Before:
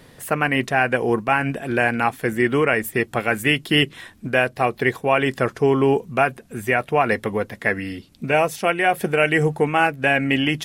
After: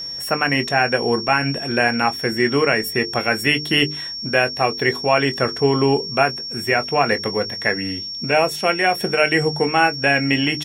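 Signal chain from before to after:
mains-hum notches 50/100/150/200/250/300/350/400/450 Hz
double-tracking delay 21 ms −12 dB
steady tone 5,500 Hz −28 dBFS
level +1 dB

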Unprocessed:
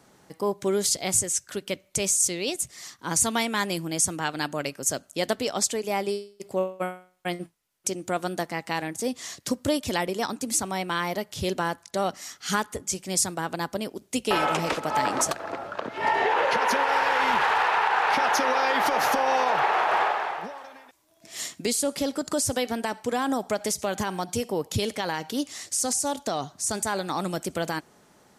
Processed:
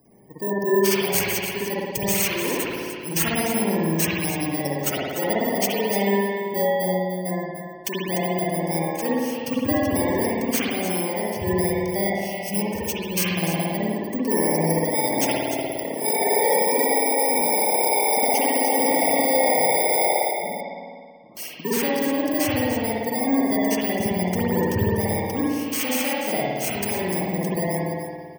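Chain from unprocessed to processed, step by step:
samples in bit-reversed order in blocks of 32 samples
0:20.31–0:21.37: Butterworth low-pass 1,200 Hz 72 dB per octave
gate on every frequency bin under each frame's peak −15 dB strong
on a send: single-tap delay 297 ms −9.5 dB
on the sum: spring reverb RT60 1.7 s, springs 55 ms, chirp 55 ms, DRR −7 dB

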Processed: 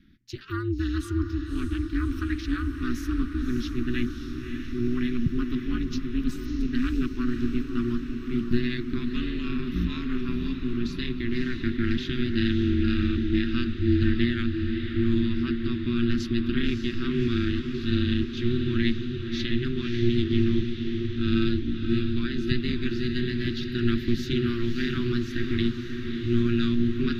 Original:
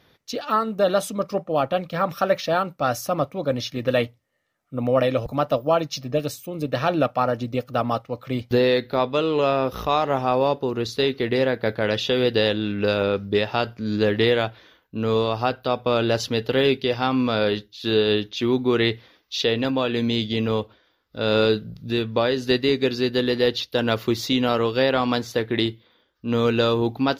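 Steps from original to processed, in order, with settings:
elliptic band-stop filter 210–1,600 Hz, stop band 40 dB
spectral tilt −3.5 dB per octave
ring modulation 120 Hz
feedback delay with all-pass diffusion 588 ms, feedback 68%, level −7 dB

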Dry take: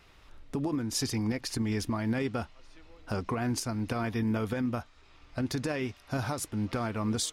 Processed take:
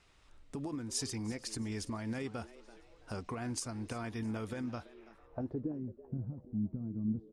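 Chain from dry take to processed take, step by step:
low-pass filter sweep 8,600 Hz → 200 Hz, 0:04.59–0:05.84
echo with shifted repeats 333 ms, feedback 36%, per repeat +110 Hz, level −18 dB
level −8.5 dB

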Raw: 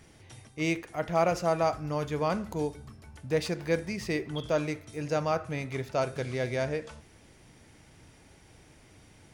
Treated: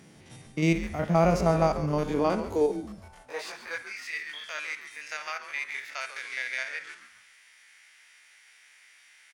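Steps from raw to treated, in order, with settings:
spectrum averaged block by block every 50 ms
high-pass filter sweep 170 Hz → 1,900 Hz, 0:01.83–0:04.06
on a send: echo with shifted repeats 139 ms, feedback 39%, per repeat −120 Hz, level −11.5 dB
0:03.22–0:04.20: on the sum: micro pitch shift up and down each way 19 cents → 32 cents
level +2.5 dB

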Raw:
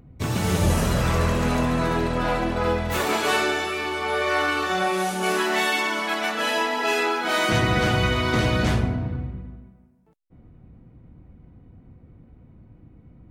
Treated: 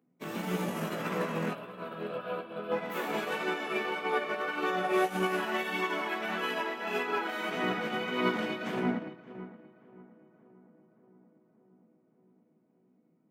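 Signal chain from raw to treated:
Butterworth high-pass 170 Hz 48 dB per octave
flat-topped bell 6,300 Hz −8 dB
brickwall limiter −21.5 dBFS, peak gain reduction 11.5 dB
0:01.53–0:02.72: phaser with its sweep stopped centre 1,300 Hz, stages 8
chorus effect 1.7 Hz, delay 16 ms, depth 2.8 ms
on a send: feedback echo with a low-pass in the loop 575 ms, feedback 73%, low-pass 1,500 Hz, level −8 dB
on the sum: expander for the loud parts 2.5 to 1, over −41 dBFS
level +4.5 dB

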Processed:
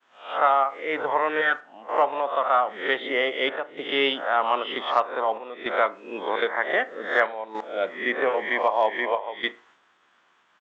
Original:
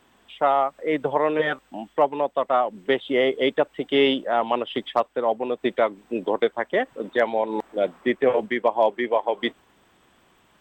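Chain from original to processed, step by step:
peak hold with a rise ahead of every peak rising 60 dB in 0.47 s
high-pass filter 730 Hz 6 dB per octave
downward expander −55 dBFS
parametric band 1,400 Hz +7.5 dB 1 octave
square-wave tremolo 0.53 Hz, depth 60%, duty 85%
on a send at −13 dB: high-frequency loss of the air 410 metres + convolution reverb, pre-delay 36 ms
on the sum: downsampling to 16,000 Hz
level −1.5 dB

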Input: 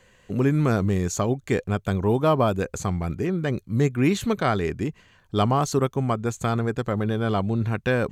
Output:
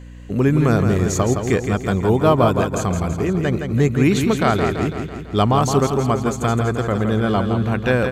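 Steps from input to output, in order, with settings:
repeating echo 166 ms, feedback 57%, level −6.5 dB
mains hum 60 Hz, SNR 19 dB
level +4.5 dB

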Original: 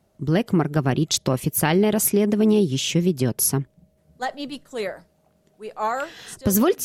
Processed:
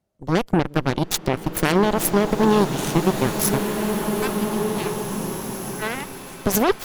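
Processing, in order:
harmonic generator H 7 −15 dB, 8 −18 dB, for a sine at −6 dBFS
slow-attack reverb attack 2,230 ms, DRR 4 dB

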